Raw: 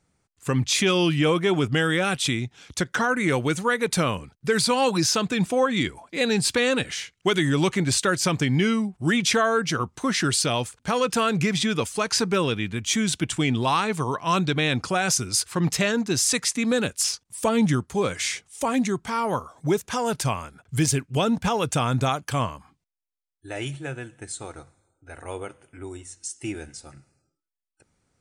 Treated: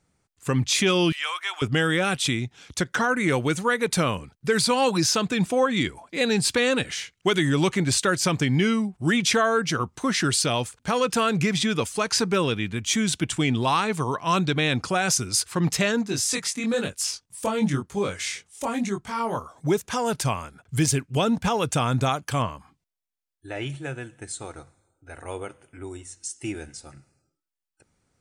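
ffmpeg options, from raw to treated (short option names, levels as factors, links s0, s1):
-filter_complex "[0:a]asettb=1/sr,asplit=3[s0][s1][s2];[s0]atrim=end=1.124[s3];[s1]atrim=start=1.12:end=1.62,asetpts=PTS-STARTPTS,afade=t=in:d=0.004:c=qsin,afade=t=out:st=0.496:d=0.004:c=qsin,highpass=f=1000:w=0.5412,highpass=f=1000:w=1.3066[s4];[s2]atrim=start=1.616[s5];[s3][s4]acrossfade=d=0.004:c1=hsin:c2=qsin[s6];[s6][s5]acrossfade=d=0.004:c1=qsin:c2=hsin,asplit=3[s7][s8][s9];[s7]afade=t=out:st=16.04:d=0.02[s10];[s8]flanger=delay=20:depth=3.8:speed=1,afade=t=in:st=16.04:d=0.02,afade=t=out:st=19.37:d=0.02[s11];[s9]afade=t=in:st=19.37:d=0.02[s12];[s10][s11][s12]amix=inputs=3:normalize=0,asettb=1/sr,asplit=3[s13][s14][s15];[s13]atrim=end=22.424[s16];[s14]atrim=start=22.42:end=23.7,asetpts=PTS-STARTPTS,afade=t=in:d=0.004:c=qsin,afade=t=out:st=1.276:d=0.004:c=qsin,acrossover=split=4500[s17][s18];[s18]acompressor=threshold=0.00112:ratio=4:attack=1:release=60[s19];[s17][s19]amix=inputs=2:normalize=0[s20];[s15]atrim=start=23.696[s21];[s16][s20]acrossfade=d=0.004:c1=hsin:c2=qsin[s22];[s22][s21]acrossfade=d=0.004:c1=qsin:c2=hsin"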